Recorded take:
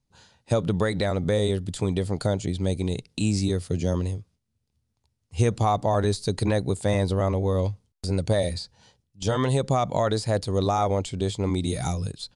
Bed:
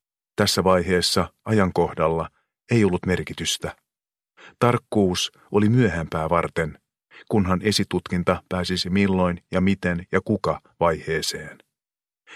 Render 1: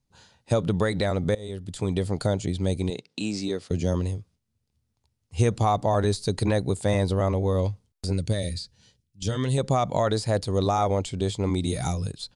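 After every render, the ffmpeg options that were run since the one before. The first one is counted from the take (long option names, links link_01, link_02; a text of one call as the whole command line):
ffmpeg -i in.wav -filter_complex "[0:a]asettb=1/sr,asplit=3[link_01][link_02][link_03];[link_01]atrim=end=2.904[link_04];[link_02]atrim=start=2.9:end=3.71,asetpts=PTS-STARTPTS,afade=type=in:duration=0.004:curve=qsin,afade=type=out:start_time=0.806:duration=0.004:curve=qsin,highpass=250,lowpass=5900[link_05];[link_03]atrim=start=3.706[link_06];[link_04][link_05]acrossfade=duration=0.004:curve1=hsin:curve2=qsin[link_07];[link_07][link_06]acrossfade=duration=0.004:curve1=qsin:curve2=hsin,asettb=1/sr,asplit=3[link_08][link_09][link_10];[link_08]atrim=end=8.134[link_11];[link_09]atrim=start=8.13:end=9.58,asetpts=PTS-STARTPTS,afade=type=in:duration=0.004:curve=qsin,afade=type=out:start_time=1.446:duration=0.004:curve=qsin,equalizer=frequency=840:width_type=o:width=1.5:gain=-13.5[link_12];[link_10]atrim=start=9.576[link_13];[link_11][link_12]acrossfade=duration=0.004:curve1=hsin:curve2=qsin[link_14];[link_14][link_13]acrossfade=duration=0.004:curve1=qsin:curve2=hsin,asplit=2[link_15][link_16];[link_15]atrim=end=1.35,asetpts=PTS-STARTPTS,afade=type=out:start_time=1.346:duration=0.004:curve=hsin:silence=0.0841395[link_17];[link_16]atrim=start=1.35,asetpts=PTS-STARTPTS,afade=type=in:duration=0.62:silence=0.0841395[link_18];[link_17][link_18]concat=n=2:v=0:a=1" out.wav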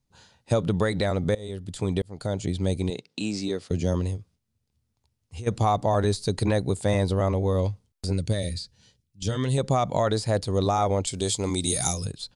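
ffmpeg -i in.wav -filter_complex "[0:a]asplit=3[link_01][link_02][link_03];[link_01]afade=type=out:start_time=4.16:duration=0.02[link_04];[link_02]acompressor=threshold=-34dB:ratio=6:attack=3.2:release=140:knee=1:detection=peak,afade=type=in:start_time=4.16:duration=0.02,afade=type=out:start_time=5.46:duration=0.02[link_05];[link_03]afade=type=in:start_time=5.46:duration=0.02[link_06];[link_04][link_05][link_06]amix=inputs=3:normalize=0,asettb=1/sr,asplit=3[link_07][link_08][link_09];[link_07]atrim=end=11.074[link_10];[link_08]atrim=start=11.07:end=12.05,asetpts=PTS-STARTPTS,afade=type=in:duration=0.004:curve=qsin,afade=type=out:start_time=0.976:duration=0.004:curve=qsin,bass=frequency=250:gain=-4,treble=frequency=4000:gain=14[link_11];[link_09]atrim=start=12.046[link_12];[link_10][link_11]acrossfade=duration=0.004:curve1=hsin:curve2=qsin[link_13];[link_13][link_12]acrossfade=duration=0.004:curve1=qsin:curve2=hsin,asplit=2[link_14][link_15];[link_14]atrim=end=2.02,asetpts=PTS-STARTPTS,afade=type=out:start_time=2.016:duration=0.004:curve=hsin[link_16];[link_15]atrim=start=2.02,asetpts=PTS-STARTPTS,afade=type=in:duration=0.44[link_17];[link_16][link_17]concat=n=2:v=0:a=1" out.wav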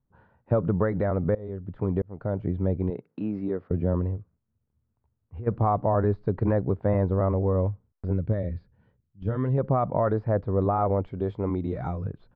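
ffmpeg -i in.wav -af "lowpass=frequency=1500:width=0.5412,lowpass=frequency=1500:width=1.3066,equalizer=frequency=790:width_type=o:width=0.28:gain=-3" out.wav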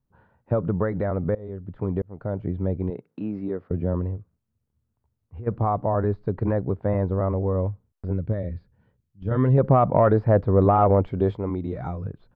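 ffmpeg -i in.wav -filter_complex "[0:a]asettb=1/sr,asplit=3[link_01][link_02][link_03];[link_01]atrim=end=9.314[link_04];[link_02]atrim=start=9.31:end=11.37,asetpts=PTS-STARTPTS,afade=type=in:duration=0.004:curve=qsin,afade=type=out:start_time=2.056:duration=0.004:curve=qsin,acontrast=69[link_05];[link_03]atrim=start=11.366[link_06];[link_04][link_05]acrossfade=duration=0.004:curve1=hsin:curve2=qsin[link_07];[link_07][link_06]acrossfade=duration=0.004:curve1=qsin:curve2=hsin" out.wav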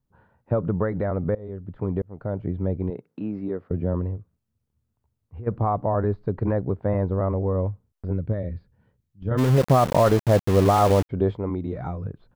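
ffmpeg -i in.wav -filter_complex "[0:a]asplit=3[link_01][link_02][link_03];[link_01]afade=type=out:start_time=9.37:duration=0.02[link_04];[link_02]aeval=exprs='val(0)*gte(abs(val(0)),0.0596)':channel_layout=same,afade=type=in:start_time=9.37:duration=0.02,afade=type=out:start_time=11.09:duration=0.02[link_05];[link_03]afade=type=in:start_time=11.09:duration=0.02[link_06];[link_04][link_05][link_06]amix=inputs=3:normalize=0" out.wav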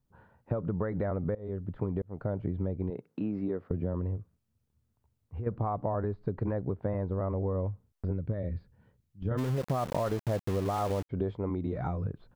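ffmpeg -i in.wav -af "acompressor=threshold=-28dB:ratio=6" out.wav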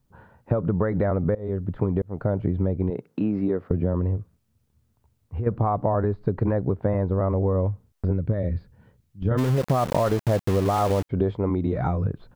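ffmpeg -i in.wav -af "volume=8.5dB" out.wav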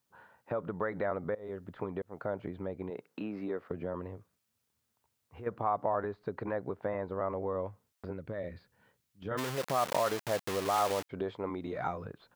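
ffmpeg -i in.wav -af "highpass=frequency=1300:poles=1" out.wav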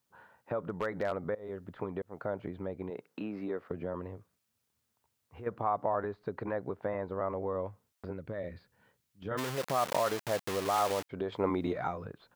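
ffmpeg -i in.wav -filter_complex "[0:a]asplit=3[link_01][link_02][link_03];[link_01]afade=type=out:start_time=0.65:duration=0.02[link_04];[link_02]aeval=exprs='0.0668*(abs(mod(val(0)/0.0668+3,4)-2)-1)':channel_layout=same,afade=type=in:start_time=0.65:duration=0.02,afade=type=out:start_time=1.11:duration=0.02[link_05];[link_03]afade=type=in:start_time=1.11:duration=0.02[link_06];[link_04][link_05][link_06]amix=inputs=3:normalize=0,asettb=1/sr,asplit=3[link_07][link_08][link_09];[link_07]atrim=end=11.324[link_10];[link_08]atrim=start=11.32:end=11.73,asetpts=PTS-STARTPTS,afade=type=in:duration=0.004:curve=qsin,afade=type=out:start_time=0.406:duration=0.004:curve=qsin,acontrast=66[link_11];[link_09]atrim=start=11.726[link_12];[link_10][link_11]acrossfade=duration=0.004:curve1=hsin:curve2=qsin[link_13];[link_13][link_12]acrossfade=duration=0.004:curve1=qsin:curve2=hsin" out.wav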